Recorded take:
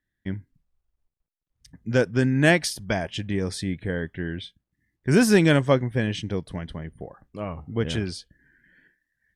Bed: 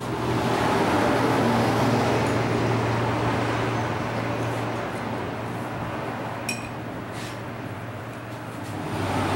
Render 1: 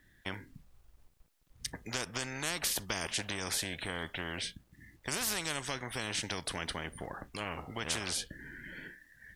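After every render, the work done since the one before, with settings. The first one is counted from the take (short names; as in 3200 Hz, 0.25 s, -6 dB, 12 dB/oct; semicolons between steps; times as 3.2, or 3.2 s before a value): compressor 10:1, threshold -24 dBFS, peak gain reduction 12.5 dB; spectral compressor 4:1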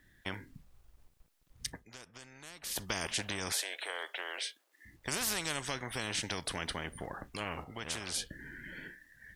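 1.68–2.81 dip -15 dB, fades 0.18 s; 3.52–4.85 inverse Chebyshev high-pass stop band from 170 Hz, stop band 50 dB; 7.64–8.14 gain -4 dB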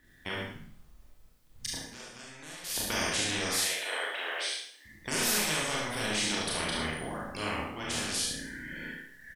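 echo 71 ms -5.5 dB; Schroeder reverb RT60 0.59 s, combs from 26 ms, DRR -3.5 dB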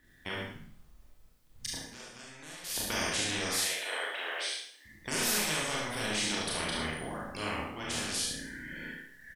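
gain -1.5 dB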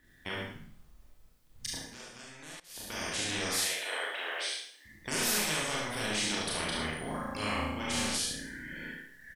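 2.6–3.41 fade in, from -18.5 dB; 7.03–8.17 flutter echo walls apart 6.4 m, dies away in 0.65 s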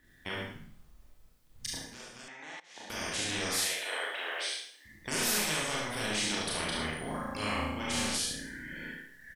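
2.28–2.9 speaker cabinet 240–6000 Hz, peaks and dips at 840 Hz +10 dB, 2000 Hz +8 dB, 4700 Hz -9 dB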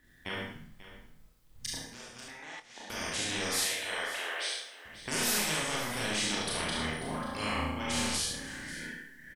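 doubler 25 ms -13.5 dB; echo 0.54 s -15 dB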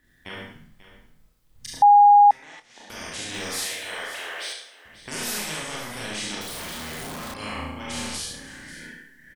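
1.82–2.31 bleep 820 Hz -9 dBFS; 3.34–4.53 G.711 law mismatch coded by mu; 6.41–7.34 infinite clipping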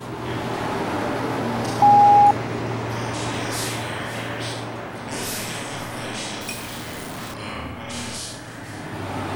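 add bed -3.5 dB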